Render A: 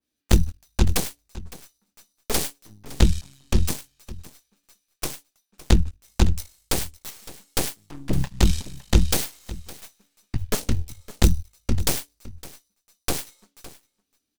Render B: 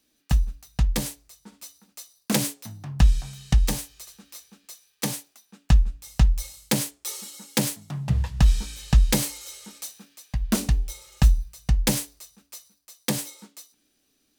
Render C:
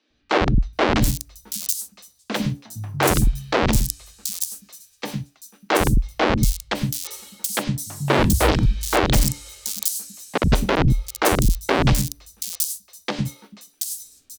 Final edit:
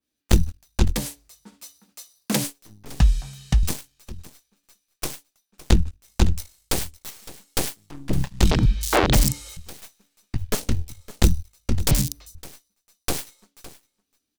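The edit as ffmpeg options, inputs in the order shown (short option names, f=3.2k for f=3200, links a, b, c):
-filter_complex "[1:a]asplit=2[a][b];[2:a]asplit=2[c][d];[0:a]asplit=5[e][f][g][h][i];[e]atrim=end=0.95[j];[a]atrim=start=0.85:end=2.53[k];[f]atrim=start=2.43:end=3.002[l];[b]atrim=start=2.998:end=3.632[m];[g]atrim=start=3.628:end=8.512[n];[c]atrim=start=8.508:end=9.572[o];[h]atrim=start=9.568:end=11.912[p];[d]atrim=start=11.908:end=12.352[q];[i]atrim=start=12.348[r];[j][k]acrossfade=d=0.1:c1=tri:c2=tri[s];[s][l]acrossfade=d=0.1:c1=tri:c2=tri[t];[t][m]acrossfade=d=0.004:c1=hsin:c2=hsin[u];[u][n]acrossfade=d=0.004:c1=hsin:c2=hsin[v];[v][o]acrossfade=d=0.004:c1=hsin:c2=hsin[w];[w][p]acrossfade=d=0.004:c1=hsin:c2=hsin[x];[x][q]acrossfade=d=0.004:c1=hsin:c2=hsin[y];[y][r]acrossfade=d=0.004:c1=hsin:c2=hsin"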